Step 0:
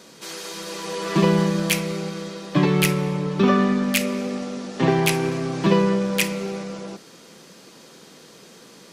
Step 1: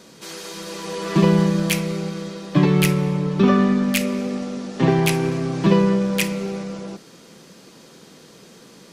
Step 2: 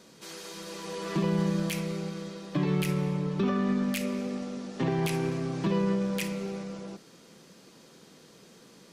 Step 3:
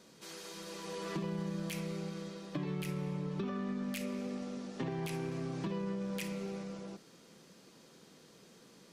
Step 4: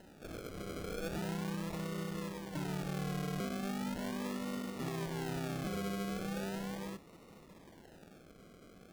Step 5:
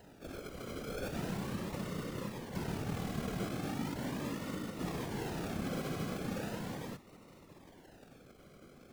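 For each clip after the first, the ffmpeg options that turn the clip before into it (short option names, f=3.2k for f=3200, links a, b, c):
-af "lowshelf=f=250:g=6.5,volume=-1dB"
-af "alimiter=limit=-10.5dB:level=0:latency=1:release=70,volume=-8dB"
-af "acompressor=threshold=-29dB:ratio=6,volume=-5dB"
-af "alimiter=level_in=9.5dB:limit=-24dB:level=0:latency=1:release=38,volume=-9.5dB,acrusher=samples=38:mix=1:aa=0.000001:lfo=1:lforange=22.8:lforate=0.38,volume=2.5dB"
-af "afftfilt=real='hypot(re,im)*cos(2*PI*random(0))':imag='hypot(re,im)*sin(2*PI*random(1))':win_size=512:overlap=0.75,volume=6dB"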